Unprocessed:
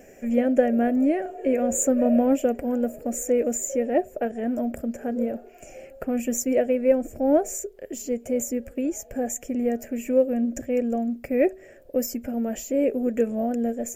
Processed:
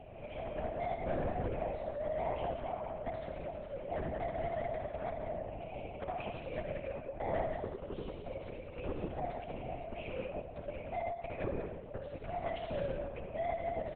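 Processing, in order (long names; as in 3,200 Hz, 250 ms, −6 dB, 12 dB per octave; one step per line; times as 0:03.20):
elliptic high-pass filter 360 Hz
downward compressor 6 to 1, threshold −33 dBFS, peak gain reduction 17.5 dB
phaser with its sweep stopped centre 480 Hz, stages 6
soft clipping −38.5 dBFS, distortion −11 dB
multi-tap delay 68/176 ms −5.5/−6 dB
convolution reverb RT60 0.85 s, pre-delay 66 ms, DRR 4 dB
linear-prediction vocoder at 8 kHz whisper
level +5.5 dB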